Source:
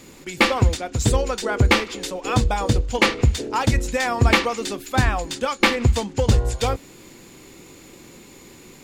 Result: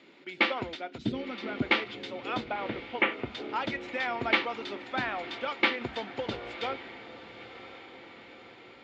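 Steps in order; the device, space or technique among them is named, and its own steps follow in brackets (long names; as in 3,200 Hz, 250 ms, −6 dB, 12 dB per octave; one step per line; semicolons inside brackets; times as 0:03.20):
0:00.98–0:01.62: octave-band graphic EQ 125/250/500/1,000/2,000/8,000 Hz +7/+10/−7/−7/−6/−8 dB
0:02.47–0:03.31: Butterworth low-pass 2,900 Hz
phone earpiece (loudspeaker in its box 450–3,200 Hz, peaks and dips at 490 Hz −9 dB, 790 Hz −6 dB, 1,100 Hz −10 dB, 1,700 Hz −6 dB, 2,600 Hz −5 dB)
feedback delay with all-pass diffusion 1,024 ms, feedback 55%, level −14 dB
level −2 dB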